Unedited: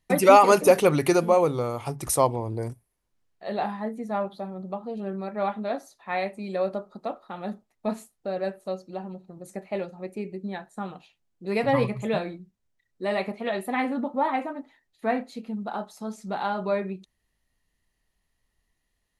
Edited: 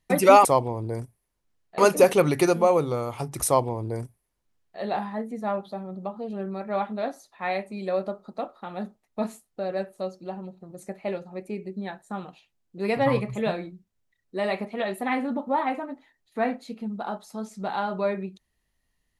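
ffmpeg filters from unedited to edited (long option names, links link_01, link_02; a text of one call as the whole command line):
ffmpeg -i in.wav -filter_complex "[0:a]asplit=3[link_01][link_02][link_03];[link_01]atrim=end=0.452[link_04];[link_02]atrim=start=2.128:end=3.462[link_05];[link_03]atrim=start=0.448[link_06];[link_04][link_05]acrossfade=duration=0.004:curve1=hsin:curve2=hsin[link_07];[link_07][link_06]acrossfade=duration=0.004:curve1=hsin:curve2=hsin" out.wav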